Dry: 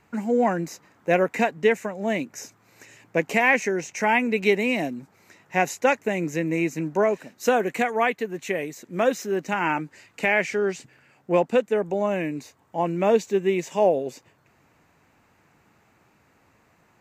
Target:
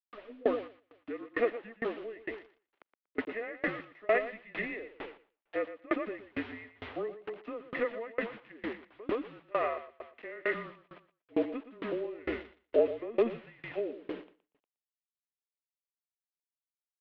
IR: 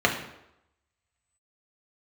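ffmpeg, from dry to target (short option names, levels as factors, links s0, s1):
-filter_complex "[0:a]aemphasis=mode=reproduction:type=riaa,bandreject=f=1600:w=11,aecho=1:1:1.4:0.69,alimiter=limit=0.251:level=0:latency=1:release=276,asettb=1/sr,asplit=3[s0][s1][s2];[s0]atrim=end=12.184[s3];[s1]atrim=start=12.18:end=13.33,asetpts=PTS-STARTPTS,afade=t=in:d=0.004:c=qsin,afade=t=out:st=1.146:d=0.004:c=qsin,acontrast=38[s4];[s2]atrim=start=13.326[s5];[s3][s4]acrossfade=d=0.004:c1=hsin:c2=qsin[s6];[s6][s5]acrossfade=d=0.004:c1=qsin:c2=hsin,aeval=exprs='val(0)+0.00178*(sin(2*PI*60*n/s)+sin(2*PI*2*60*n/s)/2+sin(2*PI*3*60*n/s)/3+sin(2*PI*4*60*n/s)/4+sin(2*PI*5*60*n/s)/5)':c=same,acrusher=bits=5:mix=0:aa=0.000001,highpass=f=570:t=q:w=0.5412,highpass=f=570:t=q:w=1.307,lowpass=f=3400:t=q:w=0.5176,lowpass=f=3400:t=q:w=0.7071,lowpass=f=3400:t=q:w=1.932,afreqshift=-230,aecho=1:1:119|238|357|476:0.531|0.165|0.051|0.0158,aeval=exprs='val(0)*pow(10,-29*if(lt(mod(2.2*n/s,1),2*abs(2.2)/1000),1-mod(2.2*n/s,1)/(2*abs(2.2)/1000),(mod(2.2*n/s,1)-2*abs(2.2)/1000)/(1-2*abs(2.2)/1000))/20)':c=same"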